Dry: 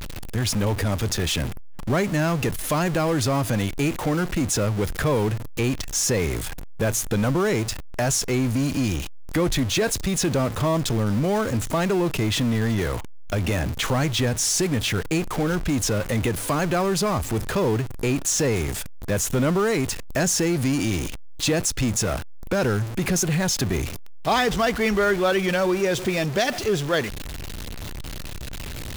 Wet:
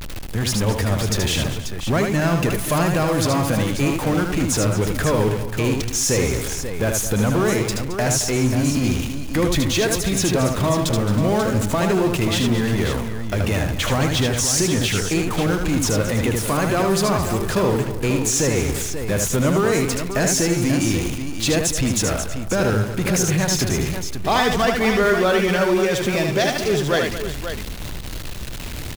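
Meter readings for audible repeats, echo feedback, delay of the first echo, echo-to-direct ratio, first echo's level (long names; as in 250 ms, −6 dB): 4, repeats not evenly spaced, 77 ms, −2.5 dB, −4.5 dB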